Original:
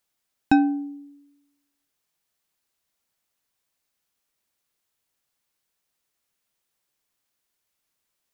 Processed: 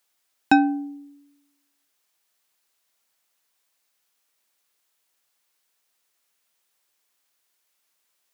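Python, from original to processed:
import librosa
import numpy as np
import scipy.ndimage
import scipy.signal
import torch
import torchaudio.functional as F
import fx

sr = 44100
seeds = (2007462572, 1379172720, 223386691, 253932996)

y = fx.highpass(x, sr, hz=520.0, slope=6)
y = F.gain(torch.from_numpy(y), 6.0).numpy()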